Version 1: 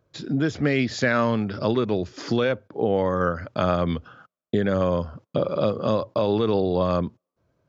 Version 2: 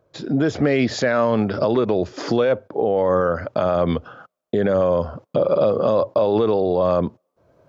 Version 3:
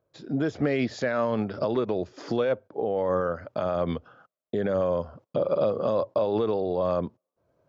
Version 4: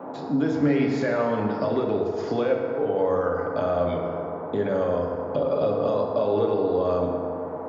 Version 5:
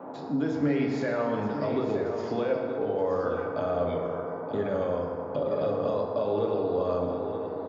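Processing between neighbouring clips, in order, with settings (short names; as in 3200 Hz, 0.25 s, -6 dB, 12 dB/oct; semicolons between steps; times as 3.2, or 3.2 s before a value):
bell 620 Hz +9.5 dB 1.8 oct; AGC gain up to 11 dB; limiter -9.5 dBFS, peak gain reduction 8.5 dB
upward expander 1.5:1, over -28 dBFS; gain -6 dB
band noise 150–960 Hz -44 dBFS; reverb RT60 2.4 s, pre-delay 4 ms, DRR -1 dB; three-band squash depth 40%; gain -1.5 dB
echo 0.925 s -9.5 dB; gain -4.5 dB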